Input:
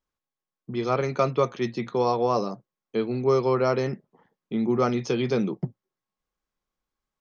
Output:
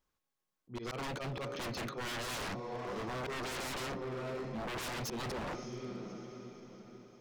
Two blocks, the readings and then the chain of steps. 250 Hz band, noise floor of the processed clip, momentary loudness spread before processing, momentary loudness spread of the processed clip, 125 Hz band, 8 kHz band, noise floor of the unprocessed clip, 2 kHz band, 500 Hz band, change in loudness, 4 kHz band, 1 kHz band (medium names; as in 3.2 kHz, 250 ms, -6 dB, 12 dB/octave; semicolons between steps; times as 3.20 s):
-15.0 dB, under -85 dBFS, 11 LU, 11 LU, -12.5 dB, no reading, under -85 dBFS, -3.5 dB, -16.5 dB, -14.0 dB, -2.0 dB, -12.5 dB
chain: de-hum 281.8 Hz, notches 2; slow attack 283 ms; saturation -24.5 dBFS, distortion -9 dB; echo that smears into a reverb 599 ms, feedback 47%, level -13.5 dB; wavefolder -37 dBFS; trim +3 dB